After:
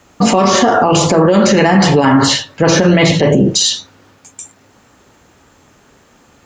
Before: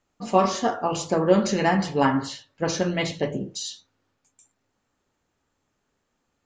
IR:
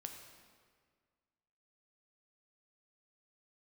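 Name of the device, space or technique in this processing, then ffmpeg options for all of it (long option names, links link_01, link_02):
mastering chain: -filter_complex "[0:a]highpass=41,equalizer=frequency=4400:width_type=o:width=0.77:gain=-1.5,acrossover=split=470|2900[link_01][link_02][link_03];[link_01]acompressor=threshold=-24dB:ratio=4[link_04];[link_02]acompressor=threshold=-24dB:ratio=4[link_05];[link_03]acompressor=threshold=-39dB:ratio=4[link_06];[link_04][link_05][link_06]amix=inputs=3:normalize=0,acompressor=threshold=-25dB:ratio=6,alimiter=level_in=28dB:limit=-1dB:release=50:level=0:latency=1,volume=-1dB"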